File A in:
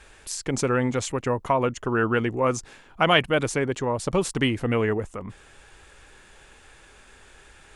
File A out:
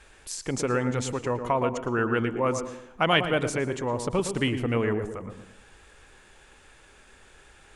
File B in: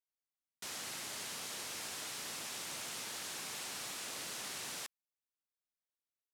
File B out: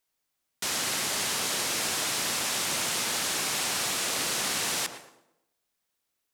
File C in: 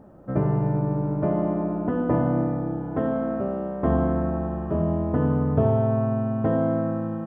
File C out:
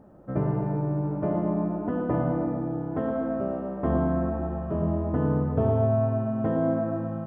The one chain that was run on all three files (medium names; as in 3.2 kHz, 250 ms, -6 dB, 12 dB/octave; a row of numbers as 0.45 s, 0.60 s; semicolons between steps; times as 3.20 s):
on a send: tape echo 113 ms, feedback 46%, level -6 dB, low-pass 1 kHz; on the sum: plate-style reverb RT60 0.76 s, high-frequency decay 0.8×, pre-delay 95 ms, DRR 17.5 dB; normalise loudness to -27 LUFS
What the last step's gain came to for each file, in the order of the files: -3.0 dB, +14.0 dB, -3.5 dB